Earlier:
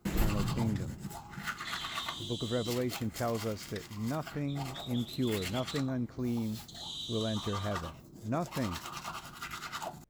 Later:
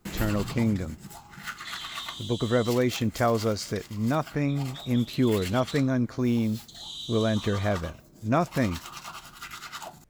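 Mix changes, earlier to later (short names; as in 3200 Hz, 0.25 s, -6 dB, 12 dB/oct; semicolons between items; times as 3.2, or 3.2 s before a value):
speech +11.5 dB; master: add tilt shelf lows -3 dB, about 1100 Hz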